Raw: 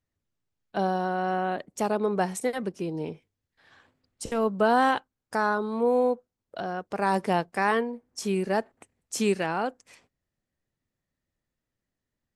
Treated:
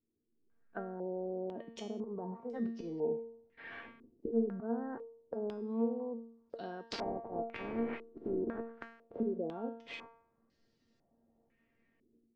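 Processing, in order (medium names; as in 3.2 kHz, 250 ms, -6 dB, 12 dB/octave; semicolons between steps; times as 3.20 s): 6.86–9.19 s: spectral contrast reduction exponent 0.12; low-pass that closes with the level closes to 500 Hz, closed at -22.5 dBFS; peaking EQ 330 Hz +10.5 dB 1.8 oct; slow attack 235 ms; level rider gain up to 14 dB; peak limiter -11 dBFS, peak gain reduction 9.5 dB; compression 4:1, threshold -29 dBFS, peak gain reduction 12.5 dB; feedback comb 230 Hz, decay 0.61 s, harmonics all, mix 90%; step-sequenced low-pass 2 Hz 360–4800 Hz; trim +5 dB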